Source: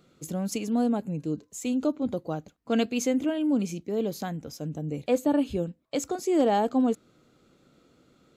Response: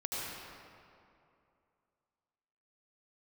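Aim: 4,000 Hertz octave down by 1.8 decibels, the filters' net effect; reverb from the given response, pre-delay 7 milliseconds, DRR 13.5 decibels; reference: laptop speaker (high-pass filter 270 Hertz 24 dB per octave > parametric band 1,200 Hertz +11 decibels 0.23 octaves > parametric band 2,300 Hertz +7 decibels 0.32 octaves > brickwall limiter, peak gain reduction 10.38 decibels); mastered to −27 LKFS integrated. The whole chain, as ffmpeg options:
-filter_complex "[0:a]equalizer=frequency=4000:width_type=o:gain=-4,asplit=2[link_01][link_02];[1:a]atrim=start_sample=2205,adelay=7[link_03];[link_02][link_03]afir=irnorm=-1:irlink=0,volume=-17.5dB[link_04];[link_01][link_04]amix=inputs=2:normalize=0,highpass=frequency=270:width=0.5412,highpass=frequency=270:width=1.3066,equalizer=frequency=1200:width_type=o:width=0.23:gain=11,equalizer=frequency=2300:width_type=o:width=0.32:gain=7,volume=6.5dB,alimiter=limit=-17dB:level=0:latency=1"

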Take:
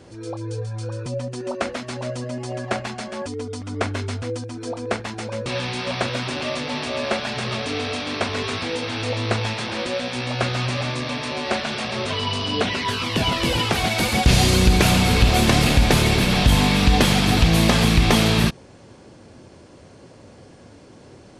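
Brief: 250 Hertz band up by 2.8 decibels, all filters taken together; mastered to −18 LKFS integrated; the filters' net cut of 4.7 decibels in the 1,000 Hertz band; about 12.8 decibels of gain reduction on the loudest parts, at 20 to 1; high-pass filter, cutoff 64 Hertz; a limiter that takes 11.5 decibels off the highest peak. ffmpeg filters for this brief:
ffmpeg -i in.wav -af "highpass=64,equalizer=frequency=250:width_type=o:gain=4,equalizer=frequency=1000:width_type=o:gain=-7,acompressor=threshold=-24dB:ratio=20,volume=14.5dB,alimiter=limit=-9.5dB:level=0:latency=1" out.wav

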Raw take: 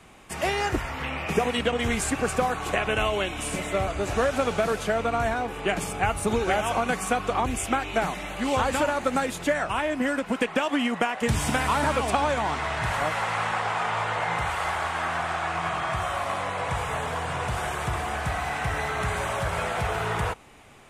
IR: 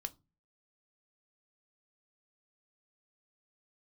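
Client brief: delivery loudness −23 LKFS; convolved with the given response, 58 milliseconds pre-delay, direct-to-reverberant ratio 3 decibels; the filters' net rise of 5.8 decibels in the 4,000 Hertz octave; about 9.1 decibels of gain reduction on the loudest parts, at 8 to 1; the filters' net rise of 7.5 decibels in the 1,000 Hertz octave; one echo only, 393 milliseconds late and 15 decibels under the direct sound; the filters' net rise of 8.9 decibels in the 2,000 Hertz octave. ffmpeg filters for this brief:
-filter_complex "[0:a]equalizer=frequency=1000:width_type=o:gain=7.5,equalizer=frequency=2000:width_type=o:gain=8,equalizer=frequency=4000:width_type=o:gain=3.5,acompressor=threshold=-22dB:ratio=8,aecho=1:1:393:0.178,asplit=2[link_01][link_02];[1:a]atrim=start_sample=2205,adelay=58[link_03];[link_02][link_03]afir=irnorm=-1:irlink=0,volume=-1dB[link_04];[link_01][link_04]amix=inputs=2:normalize=0,volume=1dB"

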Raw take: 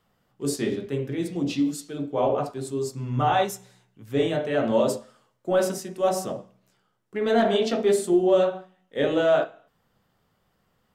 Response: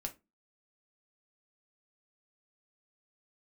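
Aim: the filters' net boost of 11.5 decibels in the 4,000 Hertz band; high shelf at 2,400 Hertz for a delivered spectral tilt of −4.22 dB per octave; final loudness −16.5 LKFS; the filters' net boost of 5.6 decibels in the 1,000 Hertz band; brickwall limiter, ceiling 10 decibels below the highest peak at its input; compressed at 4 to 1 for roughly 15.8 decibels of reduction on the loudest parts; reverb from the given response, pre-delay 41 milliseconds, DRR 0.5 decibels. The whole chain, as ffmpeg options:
-filter_complex "[0:a]equalizer=frequency=1000:width_type=o:gain=7,highshelf=frequency=2400:gain=6.5,equalizer=frequency=4000:width_type=o:gain=8.5,acompressor=threshold=-33dB:ratio=4,alimiter=level_in=6dB:limit=-24dB:level=0:latency=1,volume=-6dB,asplit=2[link_01][link_02];[1:a]atrim=start_sample=2205,adelay=41[link_03];[link_02][link_03]afir=irnorm=-1:irlink=0,volume=1dB[link_04];[link_01][link_04]amix=inputs=2:normalize=0,volume=20dB"

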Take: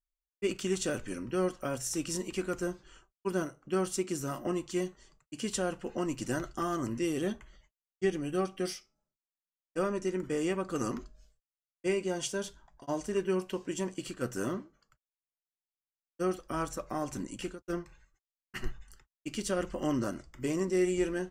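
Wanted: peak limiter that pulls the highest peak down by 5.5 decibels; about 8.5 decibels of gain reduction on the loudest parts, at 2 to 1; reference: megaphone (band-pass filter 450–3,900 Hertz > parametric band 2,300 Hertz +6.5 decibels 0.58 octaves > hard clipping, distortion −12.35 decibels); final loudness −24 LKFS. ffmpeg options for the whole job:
ffmpeg -i in.wav -af "acompressor=threshold=-39dB:ratio=2,alimiter=level_in=6.5dB:limit=-24dB:level=0:latency=1,volume=-6.5dB,highpass=450,lowpass=3900,equalizer=frequency=2300:width_type=o:width=0.58:gain=6.5,asoftclip=type=hard:threshold=-40dB,volume=23dB" out.wav

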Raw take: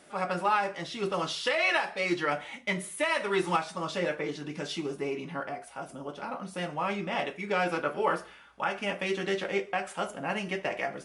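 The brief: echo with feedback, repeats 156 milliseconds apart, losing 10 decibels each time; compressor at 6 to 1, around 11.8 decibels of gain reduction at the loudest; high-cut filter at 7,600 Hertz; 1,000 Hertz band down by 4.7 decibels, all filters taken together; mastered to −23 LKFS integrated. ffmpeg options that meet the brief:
ffmpeg -i in.wav -af "lowpass=7600,equalizer=frequency=1000:width_type=o:gain=-6.5,acompressor=threshold=-37dB:ratio=6,aecho=1:1:156|312|468|624:0.316|0.101|0.0324|0.0104,volume=17.5dB" out.wav

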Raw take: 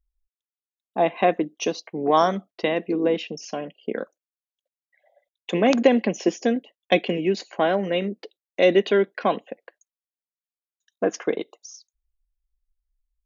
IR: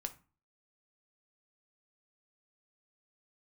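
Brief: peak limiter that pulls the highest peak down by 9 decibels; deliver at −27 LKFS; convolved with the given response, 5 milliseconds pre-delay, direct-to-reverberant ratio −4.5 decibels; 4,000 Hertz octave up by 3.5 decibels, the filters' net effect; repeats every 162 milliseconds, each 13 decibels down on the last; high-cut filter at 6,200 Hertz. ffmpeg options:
-filter_complex "[0:a]lowpass=6200,equalizer=frequency=4000:width_type=o:gain=5.5,alimiter=limit=-11.5dB:level=0:latency=1,aecho=1:1:162|324|486:0.224|0.0493|0.0108,asplit=2[link_01][link_02];[1:a]atrim=start_sample=2205,adelay=5[link_03];[link_02][link_03]afir=irnorm=-1:irlink=0,volume=6.5dB[link_04];[link_01][link_04]amix=inputs=2:normalize=0,volume=-8dB"

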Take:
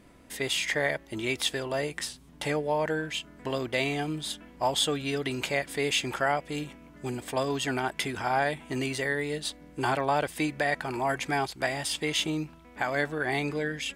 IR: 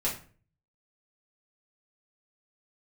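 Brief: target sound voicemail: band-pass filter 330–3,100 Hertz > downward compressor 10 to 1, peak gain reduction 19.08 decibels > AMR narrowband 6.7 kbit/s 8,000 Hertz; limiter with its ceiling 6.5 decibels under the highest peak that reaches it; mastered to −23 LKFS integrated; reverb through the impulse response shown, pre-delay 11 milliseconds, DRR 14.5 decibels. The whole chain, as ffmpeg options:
-filter_complex "[0:a]alimiter=limit=-20.5dB:level=0:latency=1,asplit=2[link_01][link_02];[1:a]atrim=start_sample=2205,adelay=11[link_03];[link_02][link_03]afir=irnorm=-1:irlink=0,volume=-21.5dB[link_04];[link_01][link_04]amix=inputs=2:normalize=0,highpass=330,lowpass=3100,acompressor=threshold=-45dB:ratio=10,volume=27dB" -ar 8000 -c:a libopencore_amrnb -b:a 6700

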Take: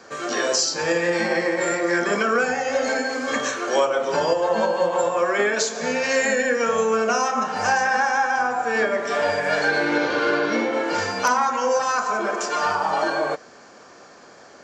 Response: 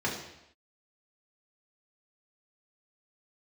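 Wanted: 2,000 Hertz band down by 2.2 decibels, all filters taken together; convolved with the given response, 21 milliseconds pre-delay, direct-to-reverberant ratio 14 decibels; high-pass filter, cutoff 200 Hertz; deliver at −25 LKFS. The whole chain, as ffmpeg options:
-filter_complex "[0:a]highpass=200,equalizer=frequency=2000:width_type=o:gain=-3,asplit=2[link_01][link_02];[1:a]atrim=start_sample=2205,adelay=21[link_03];[link_02][link_03]afir=irnorm=-1:irlink=0,volume=-23dB[link_04];[link_01][link_04]amix=inputs=2:normalize=0,volume=-3dB"

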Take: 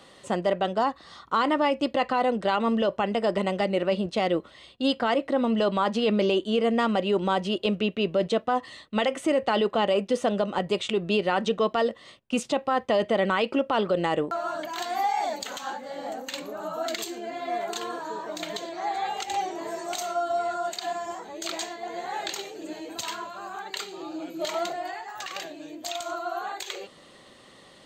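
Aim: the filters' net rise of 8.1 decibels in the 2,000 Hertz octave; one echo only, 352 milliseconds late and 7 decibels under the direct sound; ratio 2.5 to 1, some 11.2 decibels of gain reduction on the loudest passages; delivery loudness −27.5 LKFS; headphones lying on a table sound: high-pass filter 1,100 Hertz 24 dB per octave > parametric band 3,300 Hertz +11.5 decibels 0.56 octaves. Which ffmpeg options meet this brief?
ffmpeg -i in.wav -af "equalizer=frequency=2000:width_type=o:gain=7.5,acompressor=threshold=-36dB:ratio=2.5,highpass=frequency=1100:width=0.5412,highpass=frequency=1100:width=1.3066,equalizer=frequency=3300:width_type=o:width=0.56:gain=11.5,aecho=1:1:352:0.447,volume=7dB" out.wav

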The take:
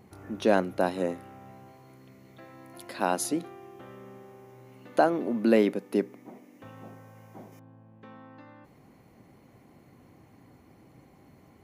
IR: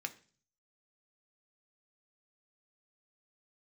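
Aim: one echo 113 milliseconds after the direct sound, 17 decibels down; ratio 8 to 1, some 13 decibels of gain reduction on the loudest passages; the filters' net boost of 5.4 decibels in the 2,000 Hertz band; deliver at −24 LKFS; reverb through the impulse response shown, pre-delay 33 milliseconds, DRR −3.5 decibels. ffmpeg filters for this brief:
-filter_complex "[0:a]equalizer=frequency=2000:width_type=o:gain=7.5,acompressor=threshold=-29dB:ratio=8,aecho=1:1:113:0.141,asplit=2[link_01][link_02];[1:a]atrim=start_sample=2205,adelay=33[link_03];[link_02][link_03]afir=irnorm=-1:irlink=0,volume=3.5dB[link_04];[link_01][link_04]amix=inputs=2:normalize=0,volume=11.5dB"

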